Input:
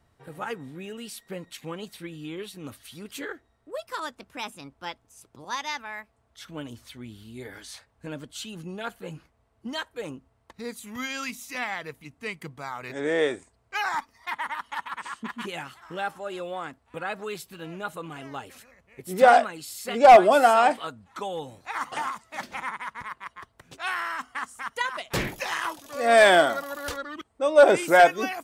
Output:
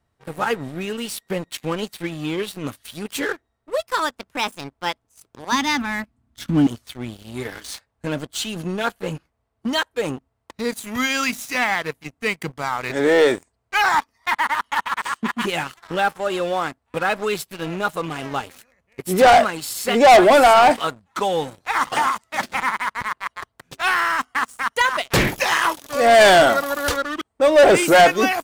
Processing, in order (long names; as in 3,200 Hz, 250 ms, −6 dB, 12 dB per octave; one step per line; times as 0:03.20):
0:05.52–0:06.67: low shelf with overshoot 350 Hz +9.5 dB, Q 3
leveller curve on the samples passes 3